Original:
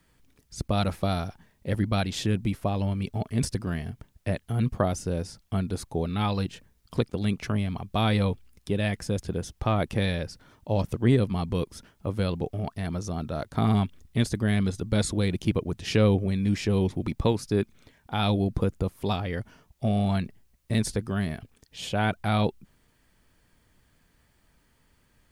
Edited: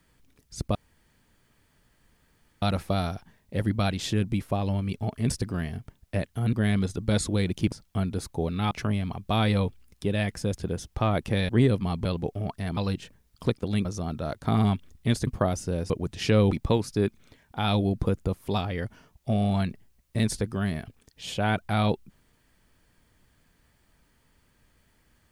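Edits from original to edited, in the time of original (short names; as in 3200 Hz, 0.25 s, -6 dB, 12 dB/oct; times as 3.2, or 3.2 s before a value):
0.75 insert room tone 1.87 s
4.66–5.29 swap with 14.37–15.56
6.28–7.36 move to 12.95
10.14–10.98 cut
11.54–12.23 cut
16.17–17.06 cut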